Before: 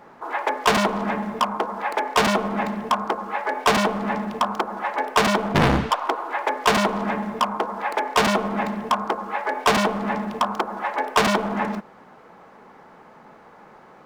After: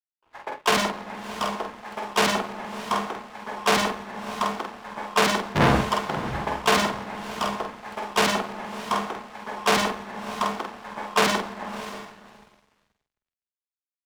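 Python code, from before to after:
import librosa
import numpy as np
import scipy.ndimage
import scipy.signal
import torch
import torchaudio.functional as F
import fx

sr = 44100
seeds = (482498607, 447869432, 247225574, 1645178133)

y = fx.low_shelf(x, sr, hz=73.0, db=-9.0)
y = fx.echo_diffused(y, sr, ms=638, feedback_pct=44, wet_db=-4.0)
y = np.sign(y) * np.maximum(np.abs(y) - 10.0 ** (-30.5 / 20.0), 0.0)
y = fx.doubler(y, sr, ms=48.0, db=-4)
y = fx.band_widen(y, sr, depth_pct=100)
y = y * 10.0 ** (-5.0 / 20.0)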